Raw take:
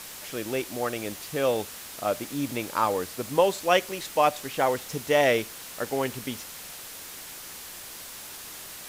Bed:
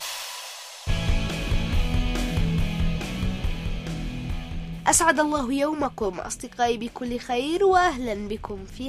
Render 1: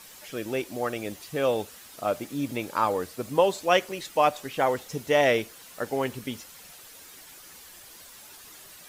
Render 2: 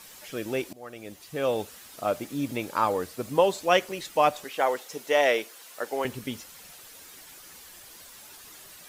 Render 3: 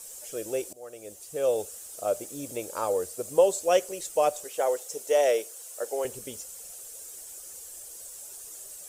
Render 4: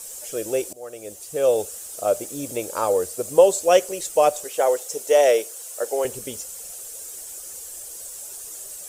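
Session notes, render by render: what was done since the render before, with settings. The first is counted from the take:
broadband denoise 9 dB, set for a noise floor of −42 dBFS
0:00.73–0:01.66: fade in, from −20 dB; 0:04.44–0:06.05: high-pass filter 380 Hz
graphic EQ with 10 bands 125 Hz −8 dB, 250 Hz −11 dB, 500 Hz +7 dB, 1,000 Hz −8 dB, 2,000 Hz −9 dB, 4,000 Hz −8 dB, 8,000 Hz +12 dB
level +6.5 dB

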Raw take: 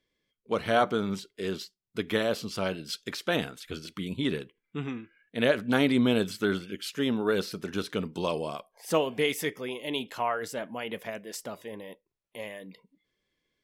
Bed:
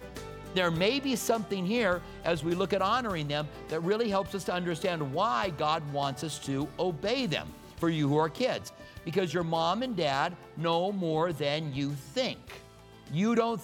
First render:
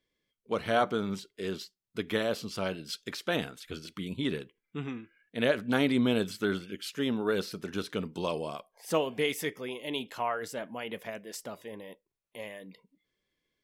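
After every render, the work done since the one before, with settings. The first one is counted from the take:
level −2.5 dB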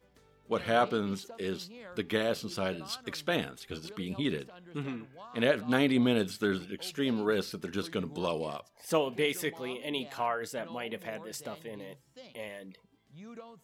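mix in bed −21 dB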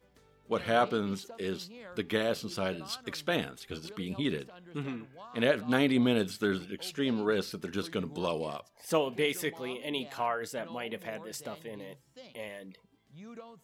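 0:06.94–0:07.42: low-pass filter 8,600 Hz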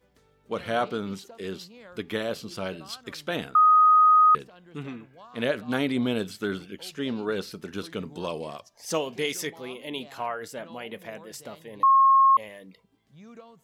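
0:03.55–0:04.35: beep over 1,250 Hz −13.5 dBFS
0:08.58–0:09.47: parametric band 5,800 Hz +11 dB 0.9 octaves
0:11.83–0:12.37: beep over 1,080 Hz −14 dBFS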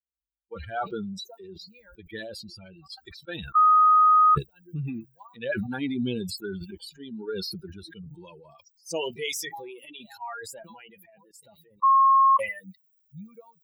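spectral dynamics exaggerated over time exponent 3
level that may fall only so fast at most 25 dB per second

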